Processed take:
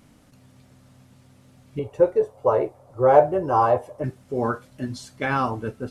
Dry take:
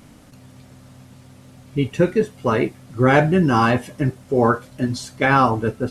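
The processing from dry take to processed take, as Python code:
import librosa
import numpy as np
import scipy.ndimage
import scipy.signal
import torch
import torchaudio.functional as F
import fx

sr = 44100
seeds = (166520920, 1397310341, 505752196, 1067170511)

y = fx.curve_eq(x, sr, hz=(110.0, 210.0, 540.0, 970.0, 1700.0, 3000.0, 10000.0), db=(0, -14, 13, 9, -8, -11, -6), at=(1.79, 4.04))
y = y * librosa.db_to_amplitude(-8.0)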